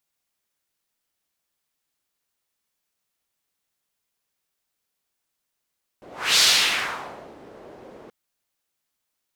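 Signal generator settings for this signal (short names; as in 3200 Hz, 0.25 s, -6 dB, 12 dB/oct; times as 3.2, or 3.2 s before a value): whoosh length 2.08 s, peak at 0.37, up 0.32 s, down 1.01 s, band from 470 Hz, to 4400 Hz, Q 1.6, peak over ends 28 dB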